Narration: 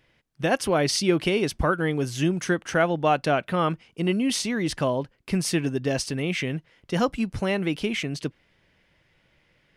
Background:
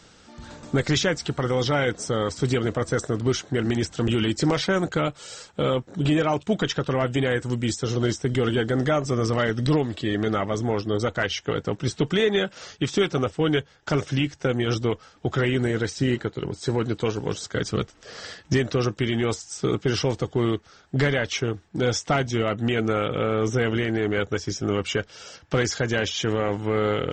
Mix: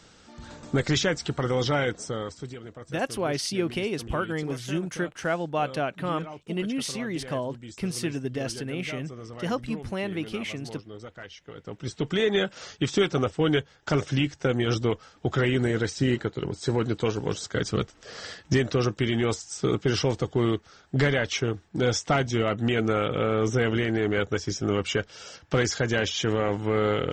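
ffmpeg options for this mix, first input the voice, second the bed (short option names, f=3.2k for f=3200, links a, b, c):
-filter_complex "[0:a]adelay=2500,volume=-5.5dB[a];[1:a]volume=14.5dB,afade=t=out:st=1.75:d=0.78:silence=0.16788,afade=t=in:st=11.55:d=0.87:silence=0.149624[b];[a][b]amix=inputs=2:normalize=0"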